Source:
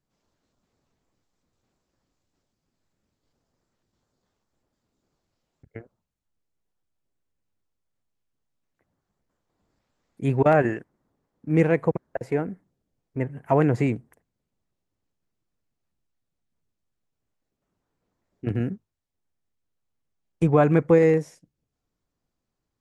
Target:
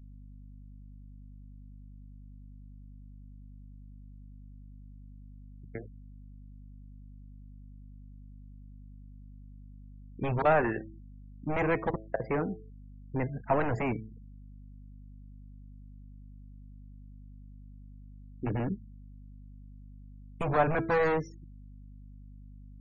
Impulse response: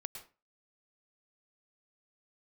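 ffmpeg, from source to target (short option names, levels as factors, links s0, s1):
-filter_complex "[0:a]asplit=2[s0][s1];[s1]acompressor=threshold=0.0501:ratio=12,volume=0.794[s2];[s0][s2]amix=inputs=2:normalize=0,atempo=1,bandreject=f=109.2:t=h:w=4,bandreject=f=218.4:t=h:w=4,bandreject=f=327.6:t=h:w=4,bandreject=f=436.8:t=h:w=4,bandreject=f=546:t=h:w=4,bandreject=f=655.2:t=h:w=4,bandreject=f=764.4:t=h:w=4,bandreject=f=873.6:t=h:w=4,bandreject=f=982.8:t=h:w=4,bandreject=f=1092:t=h:w=4,bandreject=f=1201.2:t=h:w=4,bandreject=f=1310.4:t=h:w=4,bandreject=f=1419.6:t=h:w=4,bandreject=f=1528.8:t=h:w=4,bandreject=f=1638:t=h:w=4,bandreject=f=1747.2:t=h:w=4,bandreject=f=1856.4:t=h:w=4,bandreject=f=1965.6:t=h:w=4,bandreject=f=2074.8:t=h:w=4,bandreject=f=2184:t=h:w=4,bandreject=f=2293.2:t=h:w=4,bandreject=f=2402.4:t=h:w=4,bandreject=f=2511.6:t=h:w=4,bandreject=f=2620.8:t=h:w=4,bandreject=f=2730:t=h:w=4,bandreject=f=2839.2:t=h:w=4,bandreject=f=2948.4:t=h:w=4,bandreject=f=3057.6:t=h:w=4,acrossover=split=570|980[s3][s4][s5];[s3]aeval=exprs='0.0944*(abs(mod(val(0)/0.0944+3,4)-2)-1)':c=same[s6];[s6][s4][s5]amix=inputs=3:normalize=0,aeval=exprs='val(0)+0.00708*(sin(2*PI*50*n/s)+sin(2*PI*2*50*n/s)/2+sin(2*PI*3*50*n/s)/3+sin(2*PI*4*50*n/s)/4+sin(2*PI*5*50*n/s)/5)':c=same,afftfilt=real='re*gte(hypot(re,im),0.0126)':imag='im*gte(hypot(re,im),0.0126)':win_size=1024:overlap=0.75,volume=0.596"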